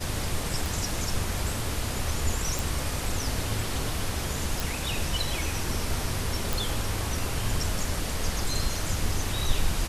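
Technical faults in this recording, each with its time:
0.66 s: pop
2.59 s: pop
4.60 s: pop
6.53 s: pop

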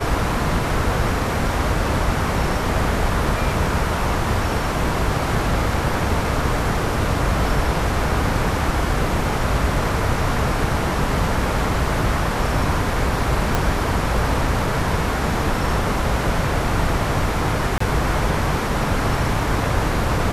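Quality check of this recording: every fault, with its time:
13.55 s: pop
17.78–17.80 s: dropout 24 ms

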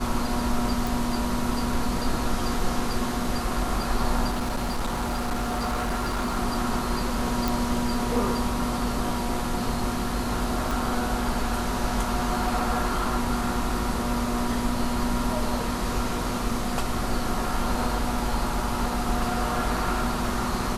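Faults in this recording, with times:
0.87 s: pop
4.30–6.37 s: clipped -23 dBFS
7.48 s: pop
10.71 s: pop

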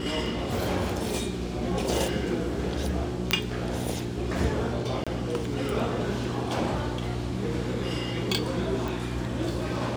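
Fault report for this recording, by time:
hum 60 Hz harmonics 6 -34 dBFS
3.31 s: pop -5 dBFS
5.04–5.07 s: dropout 26 ms
8.88 s: pop

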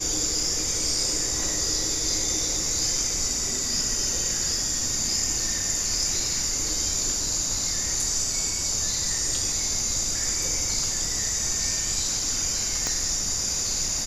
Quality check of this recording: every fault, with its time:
12.87 s: pop -12 dBFS

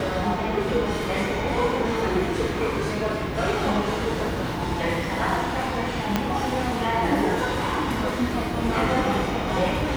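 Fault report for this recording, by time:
6.16 s: pop -7 dBFS

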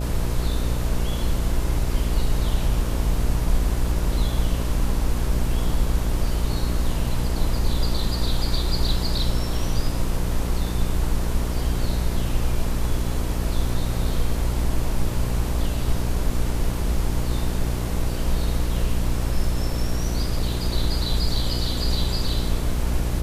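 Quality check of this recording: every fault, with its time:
buzz 60 Hz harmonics 11 -26 dBFS

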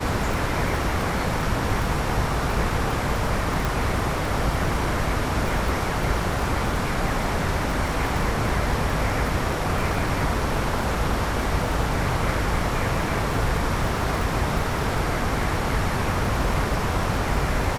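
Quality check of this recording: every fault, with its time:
crackle 41 per s -28 dBFS
3.65 s: pop

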